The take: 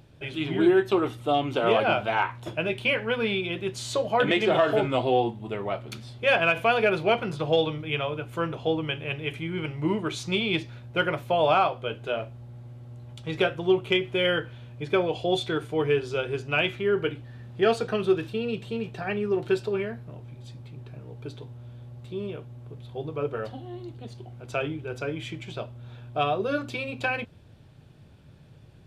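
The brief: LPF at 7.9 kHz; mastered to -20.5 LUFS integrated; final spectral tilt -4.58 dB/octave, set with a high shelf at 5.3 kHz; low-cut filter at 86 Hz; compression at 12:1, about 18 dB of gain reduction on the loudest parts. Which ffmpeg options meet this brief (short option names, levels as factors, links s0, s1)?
-af "highpass=86,lowpass=7900,highshelf=f=5300:g=-5.5,acompressor=threshold=0.0178:ratio=12,volume=9.44"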